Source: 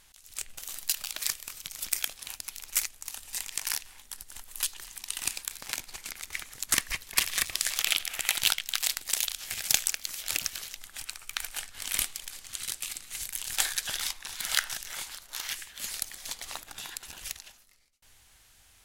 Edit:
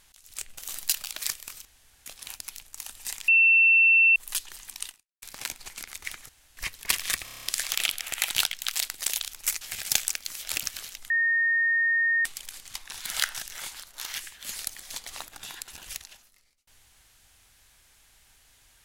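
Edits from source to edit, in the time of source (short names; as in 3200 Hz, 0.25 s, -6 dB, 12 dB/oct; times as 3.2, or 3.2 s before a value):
0.65–0.98 gain +3 dB
1.65–2.06 room tone
2.62–2.9 move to 9.4
3.56–4.44 bleep 2690 Hz -15 dBFS
5.15–5.5 fade out exponential
6.57–6.85 room tone
7.52 stutter 0.03 s, 8 plays
10.89–12.04 bleep 1840 Hz -20.5 dBFS
12.54–14.1 cut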